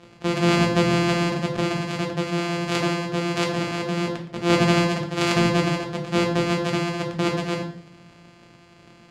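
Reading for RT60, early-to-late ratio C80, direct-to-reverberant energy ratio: 0.65 s, 11.5 dB, 1.5 dB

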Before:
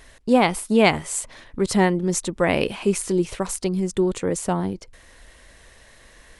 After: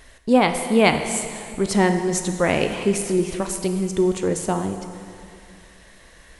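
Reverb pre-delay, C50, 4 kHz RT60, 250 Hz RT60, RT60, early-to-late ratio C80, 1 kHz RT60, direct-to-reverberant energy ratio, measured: 6 ms, 7.5 dB, 2.3 s, 2.6 s, 2.5 s, 8.5 dB, 2.5 s, 6.5 dB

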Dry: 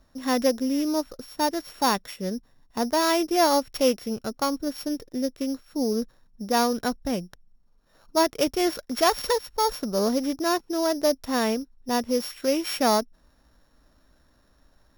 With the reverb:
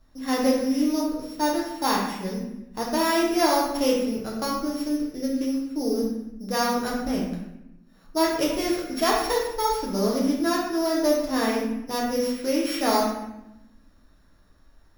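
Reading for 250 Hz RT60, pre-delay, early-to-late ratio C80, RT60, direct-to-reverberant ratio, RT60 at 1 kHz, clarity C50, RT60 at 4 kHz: 1.3 s, 6 ms, 5.0 dB, 0.90 s, -5.0 dB, 0.85 s, 2.0 dB, 0.65 s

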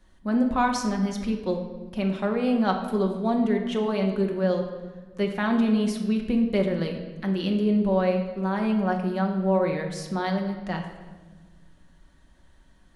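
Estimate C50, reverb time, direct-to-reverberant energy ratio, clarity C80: 6.5 dB, 1.4 s, 2.0 dB, 8.5 dB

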